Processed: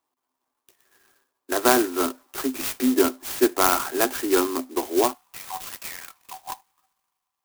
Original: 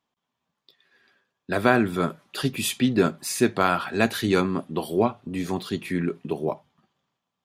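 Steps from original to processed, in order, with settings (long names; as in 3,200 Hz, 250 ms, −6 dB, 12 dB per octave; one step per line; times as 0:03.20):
Chebyshev high-pass with heavy ripple 250 Hz, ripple 6 dB, from 0:05.13 730 Hz
converter with an unsteady clock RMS 0.094 ms
level +4.5 dB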